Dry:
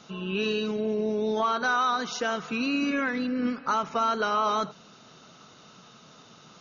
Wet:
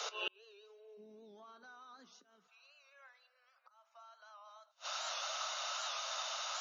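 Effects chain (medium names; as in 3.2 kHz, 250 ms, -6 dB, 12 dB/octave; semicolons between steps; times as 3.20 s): treble shelf 3.8 kHz +4 dB; slow attack 376 ms; peak limiter -21 dBFS, peak gain reduction 5.5 dB; steep high-pass 410 Hz 96 dB/octave, from 0.97 s 170 Hz, from 2.47 s 560 Hz; flange 1.2 Hz, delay 6.6 ms, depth 1.3 ms, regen +75%; dynamic bell 2.3 kHz, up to -4 dB, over -50 dBFS, Q 2; inverted gate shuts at -42 dBFS, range -40 dB; warped record 78 rpm, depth 100 cents; trim +16 dB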